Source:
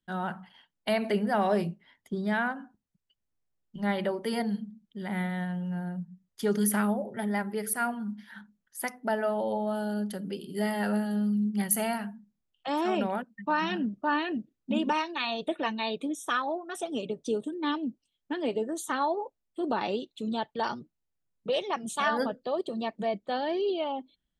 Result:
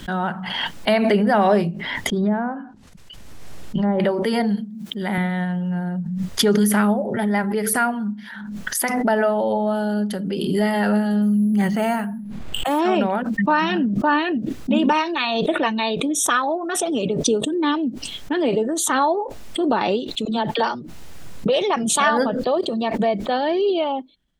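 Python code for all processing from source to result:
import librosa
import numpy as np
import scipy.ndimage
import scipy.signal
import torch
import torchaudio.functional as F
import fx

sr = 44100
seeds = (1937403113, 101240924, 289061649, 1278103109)

y = fx.chain(x, sr, fx.env_lowpass_down(base_hz=720.0, full_db=-25.0),
    fx.sustainer(db_per_s=110.0), at=(2.16, 4.0))
y = fx.chain(y, sr, fx.highpass(hz=170.0, slope=12),
    fx.high_shelf(hz=9300.0, db=10.0), at=(4.57, 5.18))
y = fx.chain(y, sr, fx.lowpass(hz=3000.0, slope=6),
    fx.resample_bad(factor=4, down='filtered', up='hold'),
    fx.sustainer(db_per_s=47.0), at=(11.22, 12.79))
y = fx.chain(y, sr, fx.peak_eq(hz=69.0, db=-14.5, octaves=1.5),
    fx.dispersion(late='lows', ms=48.0, hz=320.0), at=(20.25, 20.75))
y = fx.high_shelf(y, sr, hz=9100.0, db=-10.5)
y = fx.pre_swell(y, sr, db_per_s=30.0)
y = F.gain(torch.from_numpy(y), 9.0).numpy()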